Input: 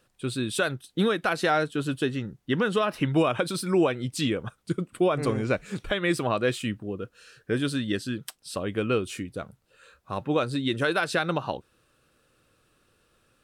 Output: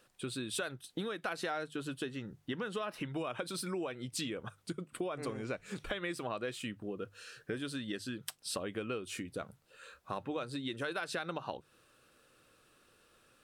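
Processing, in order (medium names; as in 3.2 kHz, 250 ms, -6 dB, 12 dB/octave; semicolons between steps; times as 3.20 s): compression 6:1, threshold -35 dBFS, peak gain reduction 16 dB; bass shelf 220 Hz -7 dB; hum notches 50/100/150 Hz; trim +1 dB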